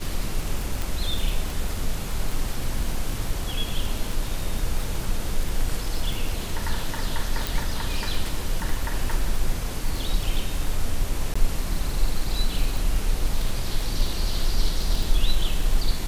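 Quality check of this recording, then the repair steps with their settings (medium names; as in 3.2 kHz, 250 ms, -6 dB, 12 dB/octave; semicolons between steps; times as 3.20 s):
crackle 26 per s -25 dBFS
0.82 s: pop
7.47 s: pop
11.34–11.36 s: dropout 15 ms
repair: de-click; interpolate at 11.34 s, 15 ms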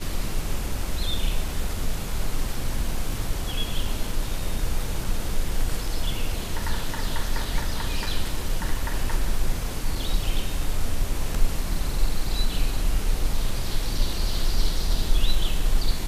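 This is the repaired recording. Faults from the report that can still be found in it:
nothing left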